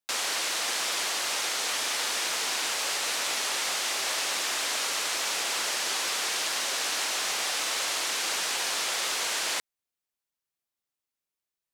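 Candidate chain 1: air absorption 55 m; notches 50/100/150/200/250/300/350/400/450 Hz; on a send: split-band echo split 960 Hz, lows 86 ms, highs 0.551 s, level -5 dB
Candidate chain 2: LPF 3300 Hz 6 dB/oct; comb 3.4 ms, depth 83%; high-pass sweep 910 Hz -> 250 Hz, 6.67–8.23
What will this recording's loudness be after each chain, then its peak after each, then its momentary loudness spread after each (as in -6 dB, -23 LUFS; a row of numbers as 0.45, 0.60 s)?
-28.0, -27.0 LUFS; -16.0, -15.0 dBFS; 8, 2 LU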